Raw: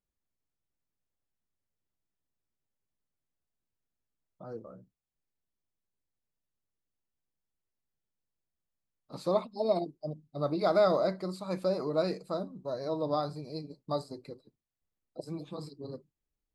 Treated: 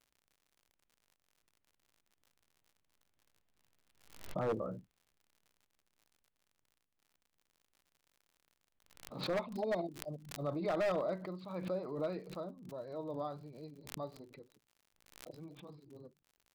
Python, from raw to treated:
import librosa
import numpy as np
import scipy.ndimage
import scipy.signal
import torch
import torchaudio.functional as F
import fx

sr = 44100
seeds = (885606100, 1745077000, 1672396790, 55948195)

y = fx.doppler_pass(x, sr, speed_mps=5, closest_m=4.3, pass_at_s=3.99)
y = scipy.signal.sosfilt(scipy.signal.butter(4, 3400.0, 'lowpass', fs=sr, output='sos'), y)
y = 10.0 ** (-38.0 / 20.0) * (np.abs((y / 10.0 ** (-38.0 / 20.0) + 3.0) % 4.0 - 2.0) - 1.0)
y = fx.dmg_crackle(y, sr, seeds[0], per_s=83.0, level_db=-66.0)
y = fx.pre_swell(y, sr, db_per_s=86.0)
y = y * librosa.db_to_amplitude(10.5)